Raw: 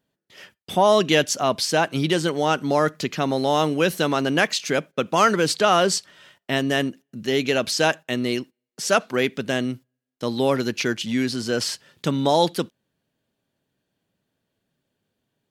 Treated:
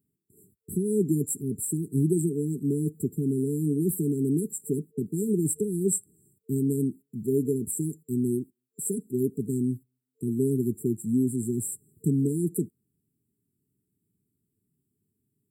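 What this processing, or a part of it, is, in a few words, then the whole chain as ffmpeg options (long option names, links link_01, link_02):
smiley-face EQ: -af "highpass=74,lowshelf=frequency=120:gain=6.5,equalizer=frequency=590:width_type=o:width=2.5:gain=-4,highshelf=frequency=8300:gain=5.5,afftfilt=real='re*(1-between(b*sr/4096,450,7300))':imag='im*(1-between(b*sr/4096,450,7300))':win_size=4096:overlap=0.75"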